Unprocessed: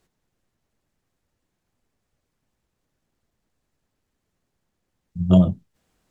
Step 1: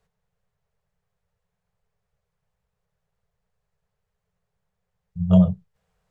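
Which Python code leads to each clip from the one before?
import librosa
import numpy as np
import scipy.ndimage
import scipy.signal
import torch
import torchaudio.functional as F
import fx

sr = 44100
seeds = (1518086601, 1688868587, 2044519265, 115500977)

y = scipy.signal.sosfilt(scipy.signal.ellip(3, 1.0, 40, [190.0, 420.0], 'bandstop', fs=sr, output='sos'), x)
y = fx.high_shelf(y, sr, hz=2500.0, db=-10.0)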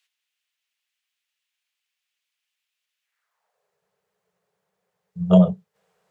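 y = fx.filter_sweep_highpass(x, sr, from_hz=2800.0, to_hz=290.0, start_s=3.0, end_s=3.81, q=2.2)
y = F.gain(torch.from_numpy(y), 5.5).numpy()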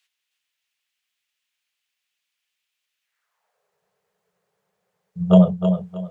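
y = fx.echo_feedback(x, sr, ms=314, feedback_pct=28, wet_db=-8)
y = F.gain(torch.from_numpy(y), 1.5).numpy()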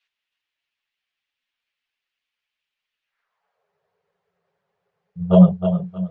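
y = fx.chorus_voices(x, sr, voices=6, hz=1.3, base_ms=10, depth_ms=3.0, mix_pct=55)
y = fx.air_absorb(y, sr, metres=190.0)
y = F.gain(torch.from_numpy(y), 4.0).numpy()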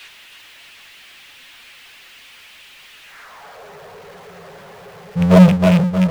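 y = fx.rattle_buzz(x, sr, strikes_db=-21.0, level_db=-25.0)
y = fx.power_curve(y, sr, exponent=0.5)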